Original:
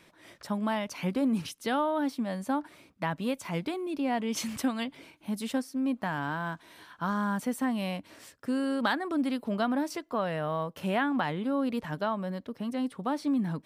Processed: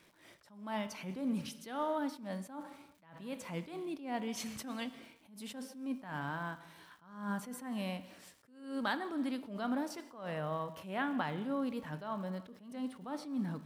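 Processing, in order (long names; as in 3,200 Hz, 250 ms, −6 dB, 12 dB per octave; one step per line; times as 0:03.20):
surface crackle 240 per second −48 dBFS
reverb whose tail is shaped and stops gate 400 ms falling, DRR 11 dB
level that may rise only so fast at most 100 dB per second
level −6.5 dB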